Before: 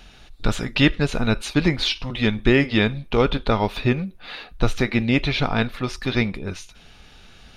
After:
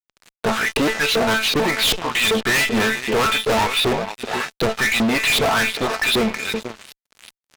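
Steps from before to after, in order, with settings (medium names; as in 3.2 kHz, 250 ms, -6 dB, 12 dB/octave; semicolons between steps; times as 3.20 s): feedback comb 220 Hz, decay 0.34 s, harmonics all, mix 80%; on a send: delay 319 ms -19 dB; on the sum: LFO band-pass saw up 2.6 Hz 400–4400 Hz; echo from a far wall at 83 m, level -21 dB; Chebyshev shaper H 3 -16 dB, 4 -13 dB, 5 -32 dB, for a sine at -23 dBFS; in parallel at -3 dB: compression, threshold -52 dBFS, peak gain reduction 20 dB; on the sum: fuzz box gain 52 dB, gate -60 dBFS; trim -2.5 dB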